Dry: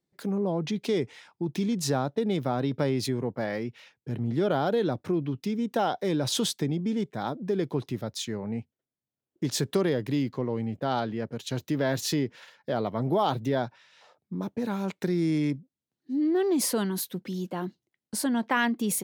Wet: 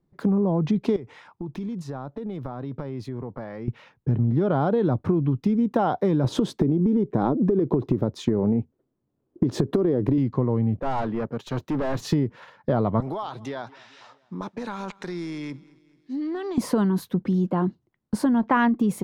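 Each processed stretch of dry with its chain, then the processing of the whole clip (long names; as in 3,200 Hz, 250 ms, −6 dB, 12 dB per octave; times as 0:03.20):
0:00.96–0:03.68: low-shelf EQ 380 Hz −7 dB + downward compressor 4 to 1, threshold −42 dBFS
0:06.24–0:10.18: parametric band 360 Hz +12.5 dB 1.6 octaves + downward compressor, threshold −21 dBFS
0:10.81–0:12.01: high-pass filter 420 Hz 6 dB per octave + hard clipping −32.5 dBFS
0:13.00–0:16.58: meter weighting curve ITU-R 468 + downward compressor, threshold −36 dBFS + repeating echo 218 ms, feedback 53%, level −22.5 dB
whole clip: spectral tilt −4 dB per octave; downward compressor, threshold −22 dBFS; parametric band 1,100 Hz +8 dB 0.89 octaves; level +3.5 dB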